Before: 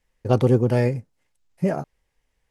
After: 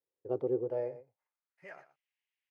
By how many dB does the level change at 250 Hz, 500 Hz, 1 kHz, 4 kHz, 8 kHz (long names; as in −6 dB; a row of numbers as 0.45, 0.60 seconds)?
−18.5 dB, −11.5 dB, −19.0 dB, below −25 dB, can't be measured